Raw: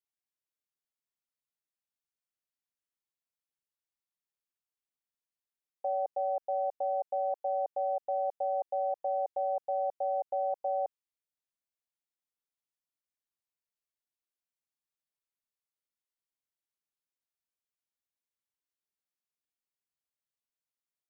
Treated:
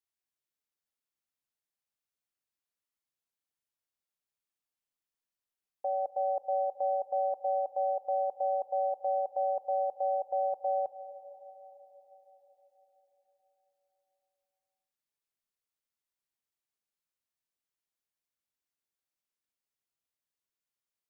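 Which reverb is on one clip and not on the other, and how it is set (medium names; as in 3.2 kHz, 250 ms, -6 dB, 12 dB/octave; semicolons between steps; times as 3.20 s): algorithmic reverb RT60 4.7 s, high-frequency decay 0.8×, pre-delay 105 ms, DRR 11 dB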